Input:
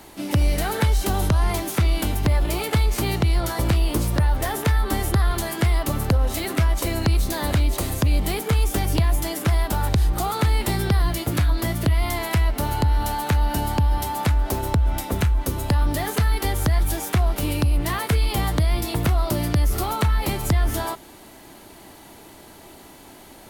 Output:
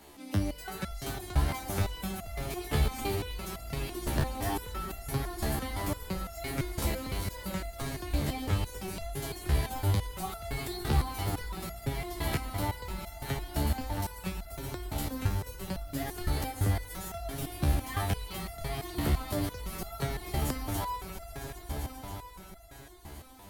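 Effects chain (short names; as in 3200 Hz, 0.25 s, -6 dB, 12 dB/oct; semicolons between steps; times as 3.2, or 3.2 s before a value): 7.62–8.64 high shelf 9500 Hz -10.5 dB; swelling echo 0.134 s, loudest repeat 5, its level -12 dB; crackling interface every 0.15 s, samples 128, zero, from 0.91; stepped resonator 5.9 Hz 72–680 Hz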